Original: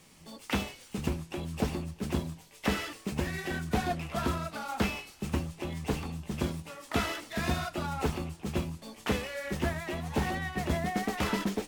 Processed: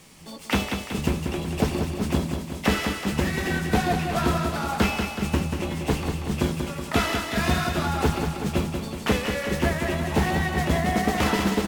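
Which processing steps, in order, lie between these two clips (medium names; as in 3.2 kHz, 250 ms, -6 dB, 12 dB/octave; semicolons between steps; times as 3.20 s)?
feedback delay 187 ms, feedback 59%, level -6 dB; trim +7 dB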